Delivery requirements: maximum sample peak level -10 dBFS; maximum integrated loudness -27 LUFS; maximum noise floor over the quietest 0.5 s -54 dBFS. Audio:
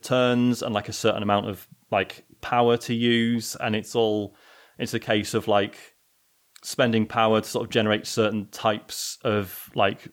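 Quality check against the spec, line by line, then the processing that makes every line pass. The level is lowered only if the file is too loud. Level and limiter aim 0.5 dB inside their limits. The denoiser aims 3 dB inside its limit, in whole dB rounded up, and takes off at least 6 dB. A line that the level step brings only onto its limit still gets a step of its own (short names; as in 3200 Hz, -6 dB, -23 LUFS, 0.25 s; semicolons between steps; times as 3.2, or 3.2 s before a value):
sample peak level -6.0 dBFS: fail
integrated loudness -24.5 LUFS: fail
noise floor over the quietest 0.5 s -66 dBFS: OK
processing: gain -3 dB; limiter -10.5 dBFS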